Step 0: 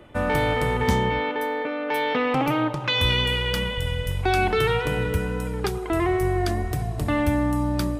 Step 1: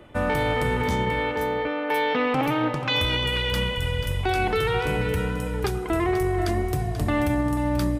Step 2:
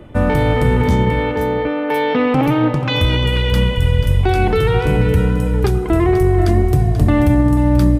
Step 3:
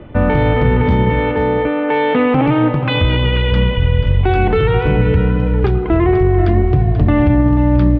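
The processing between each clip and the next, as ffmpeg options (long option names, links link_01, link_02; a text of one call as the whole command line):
ffmpeg -i in.wav -af "alimiter=limit=-15.5dB:level=0:latency=1:release=18,aecho=1:1:486:0.299" out.wav
ffmpeg -i in.wav -af "lowshelf=frequency=450:gain=11,volume=2.5dB" out.wav
ffmpeg -i in.wav -filter_complex "[0:a]lowpass=frequency=3300:width=0.5412,lowpass=frequency=3300:width=1.3066,asplit=2[link_01][link_02];[link_02]alimiter=limit=-10dB:level=0:latency=1:release=234,volume=-1dB[link_03];[link_01][link_03]amix=inputs=2:normalize=0,volume=-2.5dB" out.wav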